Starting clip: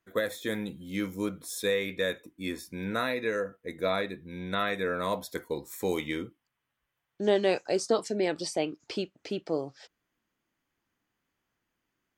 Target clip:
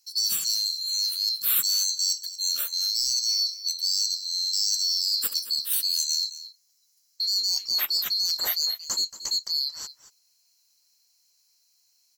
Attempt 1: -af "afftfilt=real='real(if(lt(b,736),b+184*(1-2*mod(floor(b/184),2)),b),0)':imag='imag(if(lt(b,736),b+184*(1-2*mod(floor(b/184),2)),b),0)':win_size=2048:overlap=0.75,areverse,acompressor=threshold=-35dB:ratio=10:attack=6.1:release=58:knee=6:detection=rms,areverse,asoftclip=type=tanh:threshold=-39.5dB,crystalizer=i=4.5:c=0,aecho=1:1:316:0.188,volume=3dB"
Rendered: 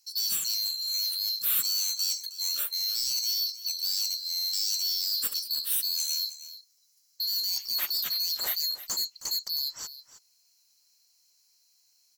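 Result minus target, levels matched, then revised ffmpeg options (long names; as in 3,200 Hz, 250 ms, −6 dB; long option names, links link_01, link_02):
soft clipping: distortion +15 dB; echo 87 ms late
-af "afftfilt=real='real(if(lt(b,736),b+184*(1-2*mod(floor(b/184),2)),b),0)':imag='imag(if(lt(b,736),b+184*(1-2*mod(floor(b/184),2)),b),0)':win_size=2048:overlap=0.75,areverse,acompressor=threshold=-35dB:ratio=10:attack=6.1:release=58:knee=6:detection=rms,areverse,asoftclip=type=tanh:threshold=-27.5dB,crystalizer=i=4.5:c=0,aecho=1:1:229:0.188,volume=3dB"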